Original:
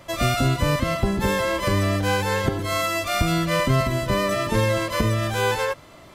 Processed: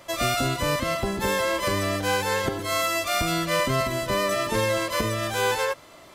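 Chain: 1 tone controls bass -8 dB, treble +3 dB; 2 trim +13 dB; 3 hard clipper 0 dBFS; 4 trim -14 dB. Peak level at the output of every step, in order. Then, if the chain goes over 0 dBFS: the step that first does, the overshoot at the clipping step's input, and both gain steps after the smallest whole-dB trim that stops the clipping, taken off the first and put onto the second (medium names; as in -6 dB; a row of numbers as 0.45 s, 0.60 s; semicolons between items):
-8.5 dBFS, +4.5 dBFS, 0.0 dBFS, -14.0 dBFS; step 2, 4.5 dB; step 2 +8 dB, step 4 -9 dB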